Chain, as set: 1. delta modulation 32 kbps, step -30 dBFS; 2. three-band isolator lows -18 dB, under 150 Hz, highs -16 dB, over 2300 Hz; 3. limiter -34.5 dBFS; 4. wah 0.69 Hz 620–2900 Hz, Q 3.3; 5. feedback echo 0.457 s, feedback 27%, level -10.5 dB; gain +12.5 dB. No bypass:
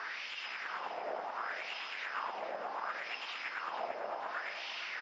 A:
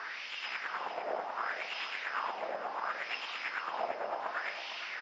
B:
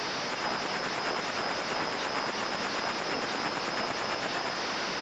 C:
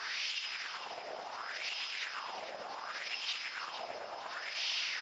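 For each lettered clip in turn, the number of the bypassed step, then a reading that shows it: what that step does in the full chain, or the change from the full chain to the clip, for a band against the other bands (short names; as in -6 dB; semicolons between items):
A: 3, mean gain reduction 2.0 dB; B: 4, 250 Hz band +13.0 dB; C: 2, 4 kHz band +11.5 dB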